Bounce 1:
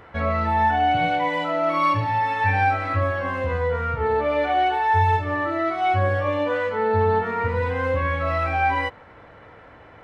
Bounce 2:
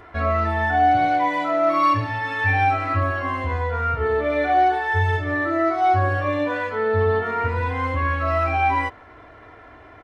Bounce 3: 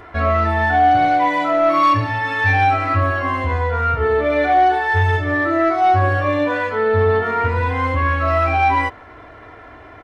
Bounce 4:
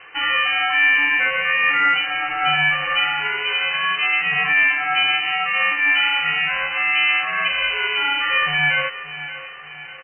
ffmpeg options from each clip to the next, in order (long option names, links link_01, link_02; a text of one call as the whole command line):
ffmpeg -i in.wav -af "aecho=1:1:2.9:0.64" out.wav
ffmpeg -i in.wav -af "asoftclip=type=tanh:threshold=-11dB,volume=5dB" out.wav
ffmpeg -i in.wav -af "lowpass=frequency=2400:width_type=q:width=0.5098,lowpass=frequency=2400:width_type=q:width=0.6013,lowpass=frequency=2400:width_type=q:width=0.9,lowpass=frequency=2400:width_type=q:width=2.563,afreqshift=-2800,aecho=1:1:577|1154|1731|2308|2885:0.2|0.0958|0.046|0.0221|0.0106,aeval=exprs='val(0)*sin(2*PI*290*n/s)':channel_layout=same" out.wav